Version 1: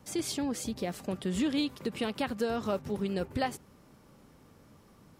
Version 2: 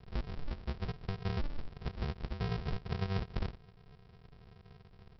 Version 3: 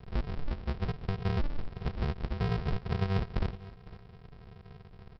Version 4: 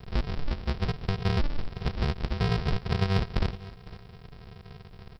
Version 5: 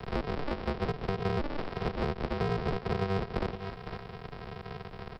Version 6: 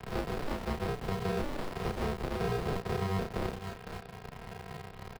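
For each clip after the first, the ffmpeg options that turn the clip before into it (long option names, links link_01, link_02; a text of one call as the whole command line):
ffmpeg -i in.wav -af "acompressor=threshold=-37dB:ratio=2,aresample=11025,acrusher=samples=38:mix=1:aa=0.000001,aresample=44100,volume=1.5dB" out.wav
ffmpeg -i in.wav -filter_complex "[0:a]lowpass=frequency=3400:poles=1,asplit=2[link_01][link_02];[link_02]asoftclip=type=tanh:threshold=-37dB,volume=-11dB[link_03];[link_01][link_03]amix=inputs=2:normalize=0,aecho=1:1:507:0.119,volume=4dB" out.wav
ffmpeg -i in.wav -af "highshelf=frequency=3800:gain=11.5,volume=4dB" out.wav
ffmpeg -i in.wav -filter_complex "[0:a]acrossover=split=200|610[link_01][link_02][link_03];[link_01]acompressor=threshold=-34dB:ratio=4[link_04];[link_02]acompressor=threshold=-38dB:ratio=4[link_05];[link_03]acompressor=threshold=-43dB:ratio=4[link_06];[link_04][link_05][link_06]amix=inputs=3:normalize=0,asplit=2[link_07][link_08];[link_08]highpass=frequency=720:poles=1,volume=15dB,asoftclip=type=tanh:threshold=-20dB[link_09];[link_07][link_09]amix=inputs=2:normalize=0,lowpass=frequency=1100:poles=1,volume=-6dB,asplit=2[link_10][link_11];[link_11]asoftclip=type=tanh:threshold=-34dB,volume=-9.5dB[link_12];[link_10][link_12]amix=inputs=2:normalize=0,volume=2.5dB" out.wav
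ffmpeg -i in.wav -filter_complex "[0:a]asplit=2[link_01][link_02];[link_02]acrusher=bits=5:mix=0:aa=0.000001,volume=-5.5dB[link_03];[link_01][link_03]amix=inputs=2:normalize=0,asplit=2[link_04][link_05];[link_05]adelay=32,volume=-2dB[link_06];[link_04][link_06]amix=inputs=2:normalize=0,volume=-7.5dB" out.wav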